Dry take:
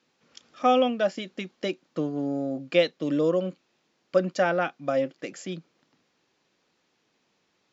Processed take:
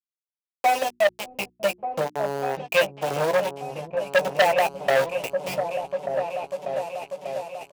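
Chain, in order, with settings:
fade in at the beginning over 1.32 s
drawn EQ curve 160 Hz 0 dB, 240 Hz −11 dB, 390 Hz −30 dB, 580 Hz −5 dB, 1,100 Hz −3 dB, 1,600 Hz −26 dB, 2,600 Hz +11 dB, 3,800 Hz −17 dB, 5,700 Hz 0 dB, 9,900 Hz −27 dB
transient designer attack +2 dB, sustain −7 dB
in parallel at −1 dB: downward compressor 16 to 1, threshold −39 dBFS, peak gain reduction 21.5 dB
on the sum: bit reduction 5 bits
high-pass filter 64 Hz 12 dB per octave
floating-point word with a short mantissa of 2 bits
flat-topped bell 580 Hz +12.5 dB
mains-hum notches 60/120/180/240/300/360 Hz
double-tracking delay 15 ms −8.5 dB
on a send: echo whose low-pass opens from repeat to repeat 593 ms, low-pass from 200 Hz, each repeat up 2 octaves, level −6 dB
on the sum: saturating transformer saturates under 2,000 Hz

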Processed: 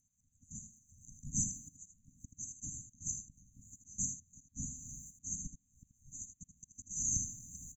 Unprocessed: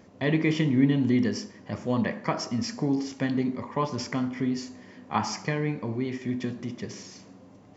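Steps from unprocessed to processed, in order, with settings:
band-splitting scrambler in four parts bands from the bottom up 4123
camcorder AGC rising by 9 dB per second
noise gate with hold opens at −42 dBFS
bass and treble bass +12 dB, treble +14 dB
downward compressor, threshold −29 dBFS, peak gain reduction 13 dB
volume swells 629 ms
rotating-speaker cabinet horn 7.5 Hz, later 1 Hz, at 0:02.69
linear-phase brick-wall band-stop 290–6,000 Hz
single-tap delay 80 ms −9 dB
level +10 dB

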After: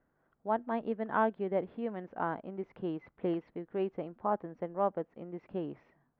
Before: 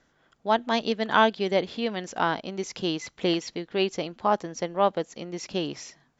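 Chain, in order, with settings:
Bessel low-pass filter 1,200 Hz, order 4
level −7 dB

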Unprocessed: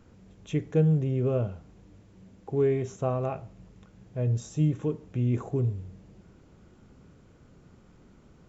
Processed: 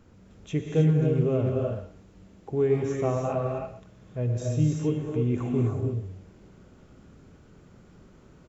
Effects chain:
far-end echo of a speakerphone 120 ms, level −11 dB
reverb whose tail is shaped and stops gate 340 ms rising, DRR 0 dB

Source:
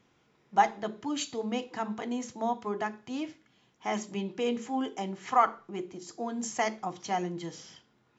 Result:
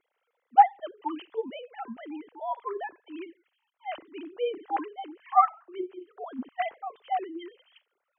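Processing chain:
three sine waves on the formant tracks
dynamic equaliser 960 Hz, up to +4 dB, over −37 dBFS, Q 1.9

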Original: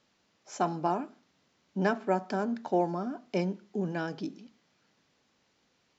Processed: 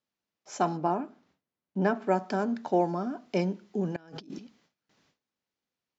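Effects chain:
noise gate with hold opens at −59 dBFS
0:00.77–0:02.02: high-shelf EQ 2,600 Hz −10.5 dB
0:03.96–0:04.39: compressor whose output falls as the input rises −49 dBFS, ratio −1
level +2 dB

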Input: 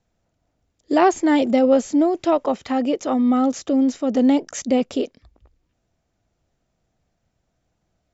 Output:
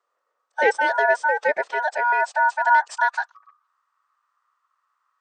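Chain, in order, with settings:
ring modulation 1,200 Hz
phase-vocoder stretch with locked phases 0.64×
high-pass filter sweep 470 Hz → 1,100 Hz, 0:01.51–0:03.26
level −2.5 dB

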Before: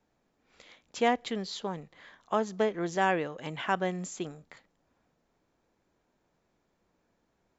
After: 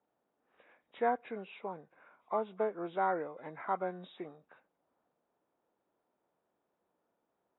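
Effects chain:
hearing-aid frequency compression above 1,000 Hz 1.5 to 1
resonant band-pass 730 Hz, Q 0.71
level −3.5 dB

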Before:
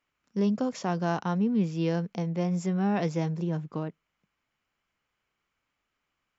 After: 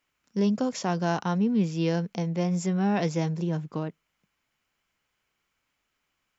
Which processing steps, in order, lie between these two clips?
high-shelf EQ 3,700 Hz +6.5 dB
notch filter 1,200 Hz, Q 24
level +1.5 dB

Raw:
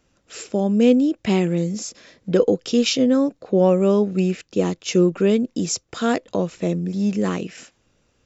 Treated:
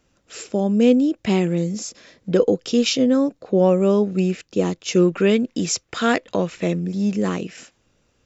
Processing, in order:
0:04.96–0:06.86: parametric band 2,100 Hz +7.5 dB 1.8 octaves

